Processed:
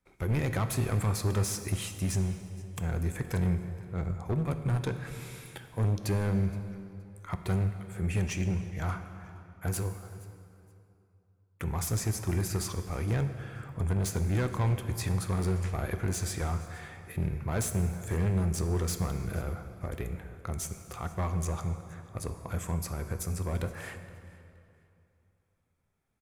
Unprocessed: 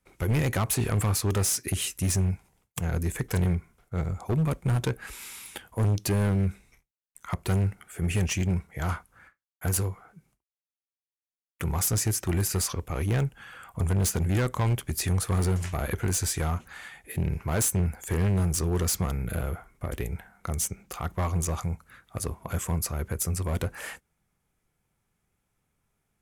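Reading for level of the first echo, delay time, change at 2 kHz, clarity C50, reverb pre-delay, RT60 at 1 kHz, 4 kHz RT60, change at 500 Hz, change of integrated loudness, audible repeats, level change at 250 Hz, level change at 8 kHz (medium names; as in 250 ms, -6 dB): -21.5 dB, 471 ms, -4.0 dB, 9.0 dB, 7 ms, 2.6 s, 2.0 s, -3.5 dB, -4.0 dB, 2, -3.0 dB, -8.5 dB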